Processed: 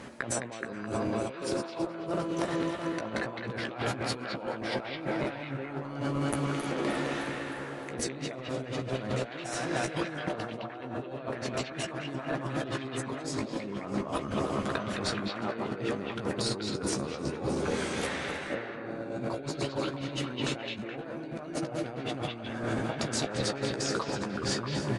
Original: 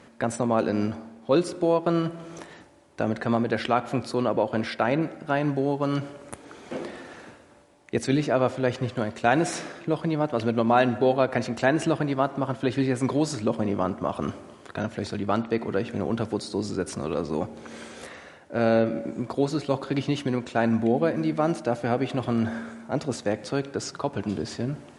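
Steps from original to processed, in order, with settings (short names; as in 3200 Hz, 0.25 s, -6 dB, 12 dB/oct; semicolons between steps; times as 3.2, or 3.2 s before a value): regenerating reverse delay 0.154 s, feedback 77%, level -12.5 dB; negative-ratio compressor -35 dBFS, ratio -1; doubler 15 ms -7.5 dB; delay with a stepping band-pass 0.212 s, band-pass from 2800 Hz, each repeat -0.7 oct, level -0.5 dB; gain -1.5 dB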